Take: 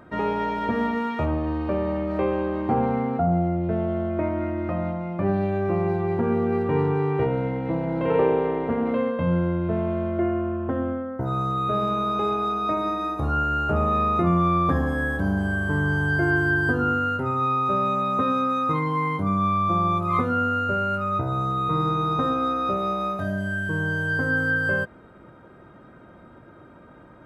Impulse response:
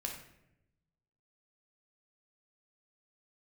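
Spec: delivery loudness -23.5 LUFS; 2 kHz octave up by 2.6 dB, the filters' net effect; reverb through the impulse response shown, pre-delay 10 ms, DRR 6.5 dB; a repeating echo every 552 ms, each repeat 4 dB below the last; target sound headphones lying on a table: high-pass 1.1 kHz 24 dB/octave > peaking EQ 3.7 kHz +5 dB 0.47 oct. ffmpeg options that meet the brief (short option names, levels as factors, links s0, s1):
-filter_complex "[0:a]equalizer=f=2000:t=o:g=4,aecho=1:1:552|1104|1656|2208|2760|3312|3864|4416|4968:0.631|0.398|0.25|0.158|0.0994|0.0626|0.0394|0.0249|0.0157,asplit=2[s0][s1];[1:a]atrim=start_sample=2205,adelay=10[s2];[s1][s2]afir=irnorm=-1:irlink=0,volume=0.473[s3];[s0][s3]amix=inputs=2:normalize=0,highpass=f=1100:w=0.5412,highpass=f=1100:w=1.3066,equalizer=f=3700:t=o:w=0.47:g=5,volume=1.33"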